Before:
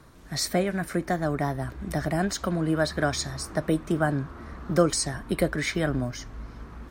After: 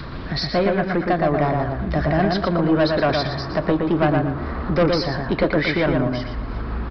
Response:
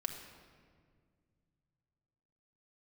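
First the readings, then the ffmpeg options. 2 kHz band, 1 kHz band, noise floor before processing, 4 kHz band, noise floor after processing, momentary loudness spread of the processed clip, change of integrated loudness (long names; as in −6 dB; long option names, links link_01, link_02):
+6.5 dB, +8.5 dB, −46 dBFS, +5.0 dB, −30 dBFS, 8 LU, +6.5 dB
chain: -filter_complex "[0:a]adynamicequalizer=threshold=0.0178:dfrequency=590:dqfactor=0.75:tfrequency=590:tqfactor=0.75:attack=5:release=100:ratio=0.375:range=2.5:mode=boostabove:tftype=bell,acompressor=mode=upward:threshold=-26dB:ratio=2.5,aresample=11025,asoftclip=type=tanh:threshold=-19dB,aresample=44100,asplit=2[link_01][link_02];[link_02]adelay=117,lowpass=frequency=2600:poles=1,volume=-3dB,asplit=2[link_03][link_04];[link_04]adelay=117,lowpass=frequency=2600:poles=1,volume=0.35,asplit=2[link_05][link_06];[link_06]adelay=117,lowpass=frequency=2600:poles=1,volume=0.35,asplit=2[link_07][link_08];[link_08]adelay=117,lowpass=frequency=2600:poles=1,volume=0.35,asplit=2[link_09][link_10];[link_10]adelay=117,lowpass=frequency=2600:poles=1,volume=0.35[link_11];[link_01][link_03][link_05][link_07][link_09][link_11]amix=inputs=6:normalize=0,volume=6dB"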